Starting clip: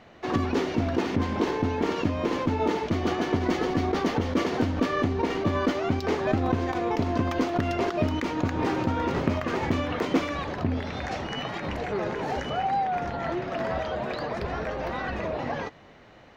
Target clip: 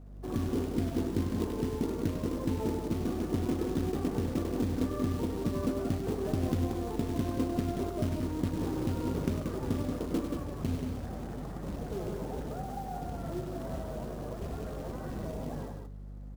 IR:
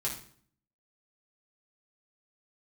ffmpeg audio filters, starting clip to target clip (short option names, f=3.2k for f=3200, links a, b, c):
-filter_complex "[0:a]lowpass=f=1.2k:w=0.5412,lowpass=f=1.2k:w=1.3066,equalizer=f=890:w=0.76:g=-11,acrusher=bits=4:mode=log:mix=0:aa=0.000001,aeval=exprs='val(0)+0.00708*(sin(2*PI*50*n/s)+sin(2*PI*2*50*n/s)/2+sin(2*PI*3*50*n/s)/3+sin(2*PI*4*50*n/s)/4+sin(2*PI*5*50*n/s)/5)':c=same,flanger=delay=4.1:depth=4.3:regen=-72:speed=1.3:shape=sinusoidal,asplit=2[a][b];[b]aecho=0:1:99.13|180.8:0.398|0.501[c];[a][c]amix=inputs=2:normalize=0"